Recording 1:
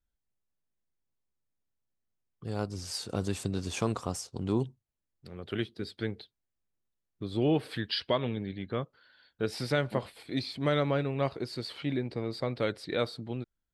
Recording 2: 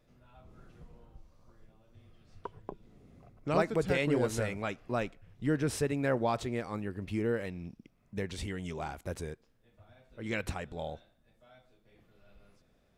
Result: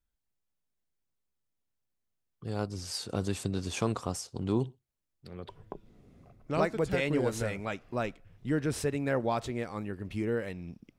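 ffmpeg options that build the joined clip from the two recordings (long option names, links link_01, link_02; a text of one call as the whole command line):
ffmpeg -i cue0.wav -i cue1.wav -filter_complex "[0:a]asettb=1/sr,asplit=3[link_01][link_02][link_03];[link_01]atrim=end=4.224[link_04];[link_02]atrim=start=4.22:end=5.49,asetpts=PTS-STARTPTS,afade=type=in:duration=0.004:curve=qsin,afade=type=out:start_time=1.266:duration=0.004:curve=qsin,aecho=1:1:63|126:0.0631|0.0183,atrim=end_sample=56007[link_05];[link_03]atrim=start=5.486[link_06];[link_04][link_05]acrossfade=duration=0.004:curve1=hsin:curve2=qsin[link_07];[link_07][link_06]acrossfade=duration=0.004:curve1=qsin:curve2=hsin,apad=whole_dur=10.98,atrim=end=10.98,atrim=end=5.492[link_08];[1:a]atrim=start=2.458:end=7.95[link_09];[link_08][link_09]acrossfade=duration=0.004:curve1=hsin:curve2=hsin" out.wav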